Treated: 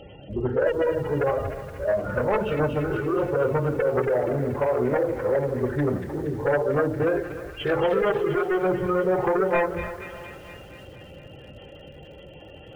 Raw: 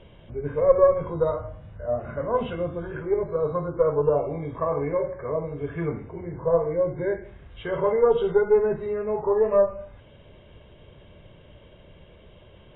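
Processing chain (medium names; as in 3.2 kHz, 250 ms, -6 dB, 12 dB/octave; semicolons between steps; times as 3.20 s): spectral gate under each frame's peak -25 dB strong; treble shelf 2.6 kHz +6 dB; hum notches 50/100/150/200/250/300/350/400 Hz; compression 6:1, threshold -24 dBFS, peak gain reduction 12.5 dB; comb of notches 1.1 kHz; sine folder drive 5 dB, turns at -17 dBFS; formant-preserving pitch shift -2.5 st; feedback echo behind a high-pass 235 ms, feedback 67%, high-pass 2.2 kHz, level -4.5 dB; bit-crushed delay 304 ms, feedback 55%, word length 7-bit, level -14 dB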